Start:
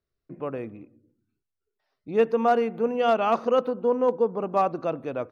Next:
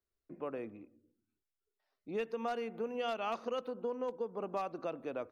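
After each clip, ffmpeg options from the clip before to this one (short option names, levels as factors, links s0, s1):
-filter_complex "[0:a]equalizer=f=130:t=o:w=0.8:g=-10,acrossover=split=110|2100[s0][s1][s2];[s1]acompressor=threshold=0.0398:ratio=6[s3];[s0][s3][s2]amix=inputs=3:normalize=0,volume=0.473"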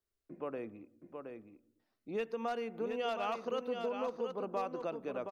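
-af "aecho=1:1:721:0.501"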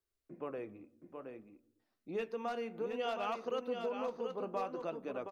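-af "flanger=delay=2.4:depth=9.9:regen=-64:speed=0.57:shape=sinusoidal,volume=1.41"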